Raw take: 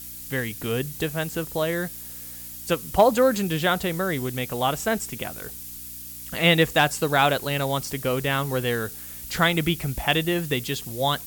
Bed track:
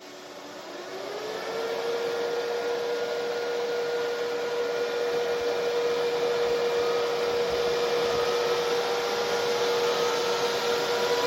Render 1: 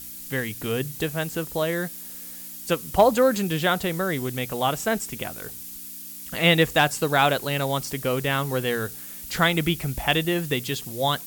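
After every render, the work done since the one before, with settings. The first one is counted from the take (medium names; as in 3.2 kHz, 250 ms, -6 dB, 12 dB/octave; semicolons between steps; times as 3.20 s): de-hum 60 Hz, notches 2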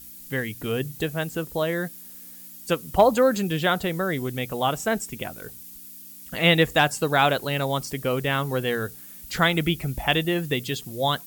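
noise reduction 7 dB, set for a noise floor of -39 dBFS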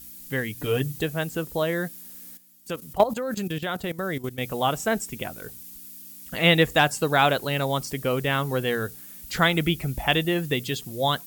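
0.57–1.00 s: comb 6.8 ms, depth 70%; 2.37–4.41 s: level held to a coarse grid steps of 14 dB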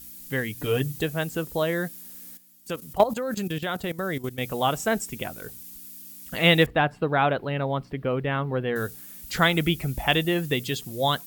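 6.66–8.76 s: distance through air 460 m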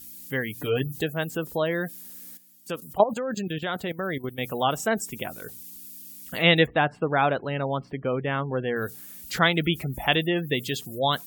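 high-pass 110 Hz 6 dB/octave; spectral gate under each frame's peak -30 dB strong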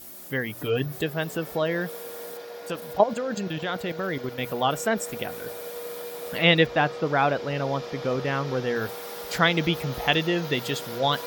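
add bed track -10.5 dB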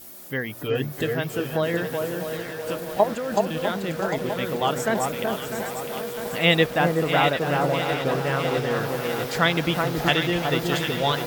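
echo whose repeats swap between lows and highs 375 ms, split 1.4 kHz, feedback 60%, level -3 dB; bit-crushed delay 651 ms, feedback 80%, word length 6-bit, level -9 dB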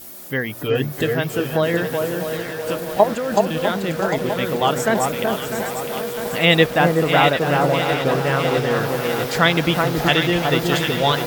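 trim +5 dB; peak limiter -2 dBFS, peak gain reduction 2 dB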